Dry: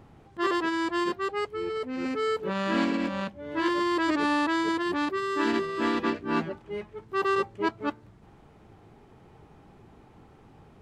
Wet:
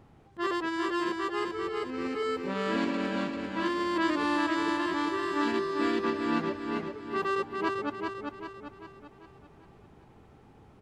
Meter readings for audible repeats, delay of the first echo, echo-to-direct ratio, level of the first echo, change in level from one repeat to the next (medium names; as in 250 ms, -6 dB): 5, 393 ms, -3.0 dB, -4.0 dB, -6.5 dB